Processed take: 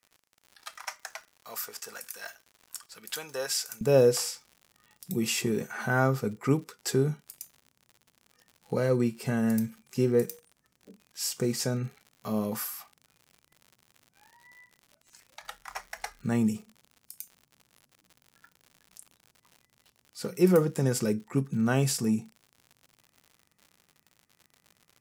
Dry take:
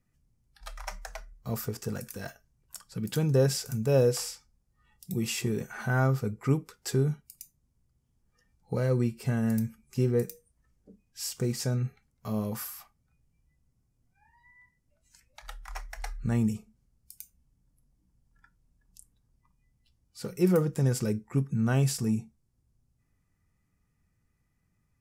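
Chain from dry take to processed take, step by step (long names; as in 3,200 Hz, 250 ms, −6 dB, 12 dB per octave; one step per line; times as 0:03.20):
high-pass filter 1,000 Hz 12 dB per octave, from 0:03.81 180 Hz
surface crackle 100 per second −46 dBFS
level +3.5 dB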